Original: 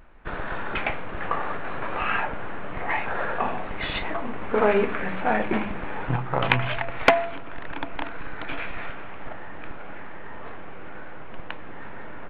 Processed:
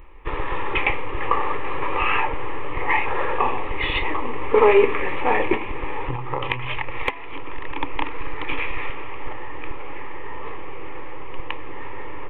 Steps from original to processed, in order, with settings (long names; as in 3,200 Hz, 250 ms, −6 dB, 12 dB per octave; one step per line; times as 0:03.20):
0:05.54–0:07.80: downward compressor 12 to 1, threshold −26 dBFS, peak gain reduction 16 dB
phaser with its sweep stopped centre 1,000 Hz, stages 8
level +8 dB